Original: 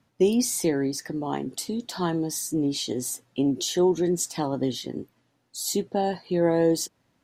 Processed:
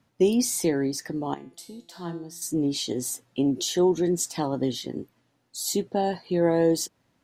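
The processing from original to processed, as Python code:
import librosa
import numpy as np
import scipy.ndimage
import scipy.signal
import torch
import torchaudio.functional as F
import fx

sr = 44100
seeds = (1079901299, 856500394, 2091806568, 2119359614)

y = fx.comb_fb(x, sr, f0_hz=170.0, decay_s=0.51, harmonics='all', damping=0.0, mix_pct=80, at=(1.34, 2.42))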